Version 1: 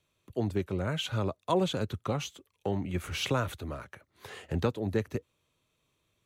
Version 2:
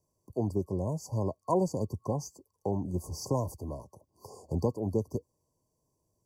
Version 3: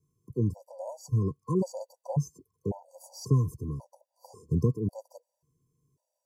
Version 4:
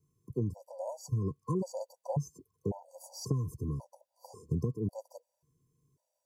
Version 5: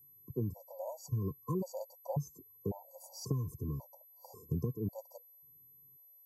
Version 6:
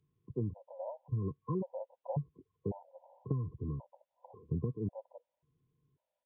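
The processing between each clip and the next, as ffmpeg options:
ffmpeg -i in.wav -af "afftfilt=real='re*(1-between(b*sr/4096,1100,4500))':imag='im*(1-between(b*sr/4096,1100,4500))':win_size=4096:overlap=0.75" out.wav
ffmpeg -i in.wav -af "equalizer=frequency=140:width_type=o:width=0.76:gain=11.5,afftfilt=real='re*gt(sin(2*PI*0.92*pts/sr)*(1-2*mod(floor(b*sr/1024/500),2)),0)':imag='im*gt(sin(2*PI*0.92*pts/sr)*(1-2*mod(floor(b*sr/1024/500),2)),0)':win_size=1024:overlap=0.75" out.wav
ffmpeg -i in.wav -af "acompressor=threshold=-28dB:ratio=6" out.wav
ffmpeg -i in.wav -af "aeval=exprs='val(0)+0.00178*sin(2*PI*12000*n/s)':channel_layout=same,volume=-3dB" out.wav
ffmpeg -i in.wav -af "aresample=8000,aresample=44100" out.wav

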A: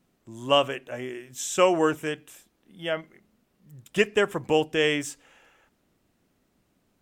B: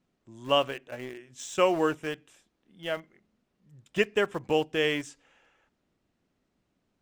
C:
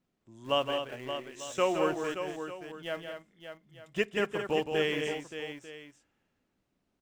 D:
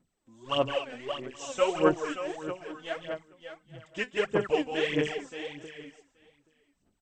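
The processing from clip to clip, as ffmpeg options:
ffmpeg -i in.wav -filter_complex "[0:a]lowpass=6600,asplit=2[link_01][link_02];[link_02]aeval=exprs='val(0)*gte(abs(val(0)),0.0316)':channel_layout=same,volume=-7dB[link_03];[link_01][link_03]amix=inputs=2:normalize=0,volume=-6.5dB" out.wav
ffmpeg -i in.wav -af "aecho=1:1:167|220|575|895:0.422|0.398|0.355|0.158,volume=-4.5dB" out.wav
ffmpeg -i in.wav -af "aphaser=in_gain=1:out_gain=1:delay=4:decay=0.76:speed=1.6:type=sinusoidal,aecho=1:1:827:0.0708,volume=-3dB" -ar 32000 -c:a mp2 -b:a 64k out.mp2

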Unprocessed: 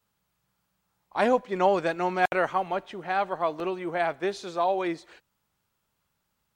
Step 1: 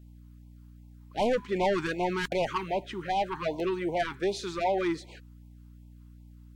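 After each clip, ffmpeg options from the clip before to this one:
ffmpeg -i in.wav -af "asoftclip=type=tanh:threshold=-24.5dB,aeval=exprs='val(0)+0.00251*(sin(2*PI*60*n/s)+sin(2*PI*2*60*n/s)/2+sin(2*PI*3*60*n/s)/3+sin(2*PI*4*60*n/s)/4+sin(2*PI*5*60*n/s)/5)':channel_layout=same,afftfilt=real='re*(1-between(b*sr/1024,560*pow(1500/560,0.5+0.5*sin(2*PI*2.6*pts/sr))/1.41,560*pow(1500/560,0.5+0.5*sin(2*PI*2.6*pts/sr))*1.41))':imag='im*(1-between(b*sr/1024,560*pow(1500/560,0.5+0.5*sin(2*PI*2.6*pts/sr))/1.41,560*pow(1500/560,0.5+0.5*sin(2*PI*2.6*pts/sr))*1.41))':win_size=1024:overlap=0.75,volume=3dB" out.wav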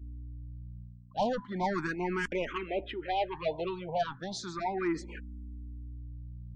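ffmpeg -i in.wav -filter_complex "[0:a]afftdn=noise_reduction=26:noise_floor=-51,areverse,acompressor=mode=upward:threshold=-31dB:ratio=2.5,areverse,asplit=2[link_01][link_02];[link_02]afreqshift=0.35[link_03];[link_01][link_03]amix=inputs=2:normalize=1" out.wav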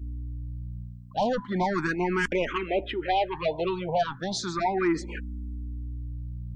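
ffmpeg -i in.wav -af "alimiter=level_in=0.5dB:limit=-24dB:level=0:latency=1:release=320,volume=-0.5dB,volume=8dB" out.wav

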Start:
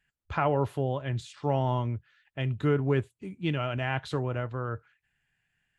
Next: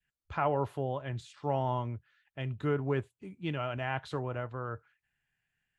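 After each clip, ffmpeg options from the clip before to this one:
ffmpeg -i in.wav -af "adynamicequalizer=threshold=0.0126:dfrequency=900:dqfactor=0.7:tfrequency=900:tqfactor=0.7:attack=5:release=100:ratio=0.375:range=2.5:mode=boostabove:tftype=bell,volume=-6.5dB" out.wav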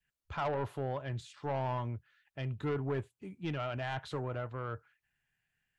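ffmpeg -i in.wav -af "asoftclip=type=tanh:threshold=-28dB" out.wav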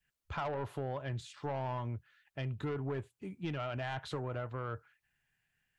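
ffmpeg -i in.wav -af "acompressor=threshold=-36dB:ratio=6,volume=2dB" out.wav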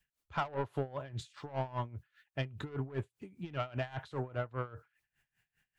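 ffmpeg -i in.wav -af "aeval=exprs='val(0)*pow(10,-20*(0.5-0.5*cos(2*PI*5*n/s))/20)':channel_layout=same,volume=5.5dB" out.wav

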